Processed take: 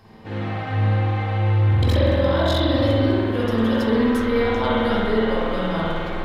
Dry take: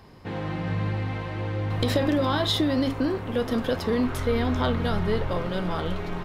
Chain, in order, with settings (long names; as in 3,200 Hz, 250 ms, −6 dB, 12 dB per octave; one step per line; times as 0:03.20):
mains-hum notches 60/120/180 Hz
tuned comb filter 110 Hz, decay 0.15 s, harmonics all, mix 70%
0:01.69–0:02.74: ring modulation 23 Hz
spring reverb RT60 1.8 s, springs 49 ms, chirp 20 ms, DRR −6.5 dB
level +3.5 dB